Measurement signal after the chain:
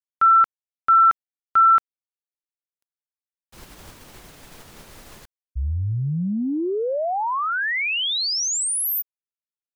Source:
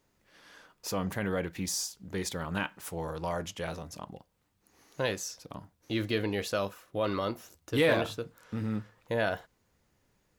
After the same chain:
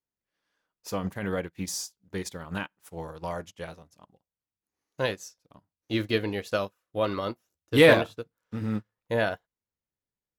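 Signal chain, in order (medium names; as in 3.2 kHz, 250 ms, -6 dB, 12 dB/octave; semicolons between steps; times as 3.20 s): in parallel at -2.5 dB: peak limiter -25 dBFS; on the sum: upward expansion 2.5:1, over -45 dBFS; trim +7.5 dB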